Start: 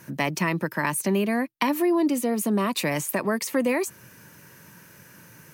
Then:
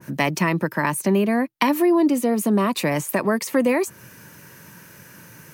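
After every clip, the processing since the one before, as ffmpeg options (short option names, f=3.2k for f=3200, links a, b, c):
-af "adynamicequalizer=threshold=0.0126:dfrequency=1700:dqfactor=0.7:tfrequency=1700:tqfactor=0.7:attack=5:release=100:ratio=0.375:range=3:mode=cutabove:tftype=highshelf,volume=4.5dB"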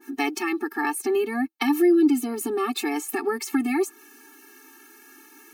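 -af "afftfilt=real='re*eq(mod(floor(b*sr/1024/230),2),1)':imag='im*eq(mod(floor(b*sr/1024/230),2),1)':win_size=1024:overlap=0.75"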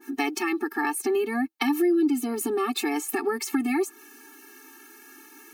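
-af "acompressor=threshold=-24dB:ratio=2,volume=1dB"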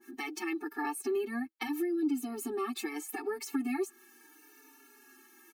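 -filter_complex "[0:a]asplit=2[a][b];[b]adelay=5.6,afreqshift=-0.76[c];[a][c]amix=inputs=2:normalize=1,volume=-6.5dB"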